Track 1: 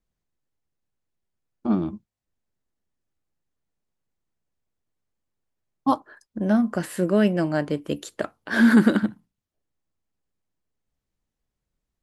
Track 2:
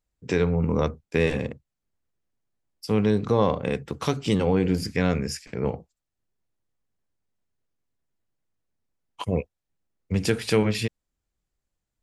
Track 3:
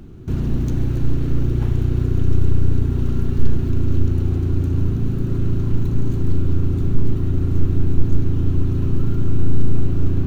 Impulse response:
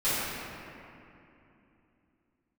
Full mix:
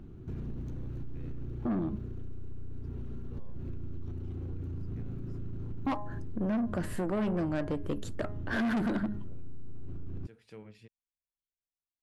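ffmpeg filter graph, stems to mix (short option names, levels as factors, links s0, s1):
-filter_complex "[0:a]bandreject=f=206.6:t=h:w=4,bandreject=f=413.2:t=h:w=4,bandreject=f=619.8:t=h:w=4,bandreject=f=826.4:t=h:w=4,bandreject=f=1033:t=h:w=4,bandreject=f=1239.6:t=h:w=4,bandreject=f=1446.2:t=h:w=4,bandreject=f=1652.8:t=h:w=4,bandreject=f=1859.4:t=h:w=4,bandreject=f=2066:t=h:w=4,agate=range=0.0224:threshold=0.00501:ratio=3:detection=peak,highshelf=f=2100:g=-9.5,volume=0.944,asplit=2[s0][s1];[1:a]volume=0.106[s2];[2:a]acompressor=threshold=0.251:ratio=6,asoftclip=type=tanh:threshold=0.376,volume=0.376[s3];[s1]apad=whole_len=530490[s4];[s2][s4]sidechaingate=range=0.398:threshold=0.00316:ratio=16:detection=peak[s5];[s5][s3]amix=inputs=2:normalize=0,highshelf=f=3300:g=-9.5,alimiter=level_in=2.11:limit=0.0631:level=0:latency=1:release=189,volume=0.473,volume=1[s6];[s0][s6]amix=inputs=2:normalize=0,asoftclip=type=tanh:threshold=0.0708,acompressor=threshold=0.0398:ratio=6"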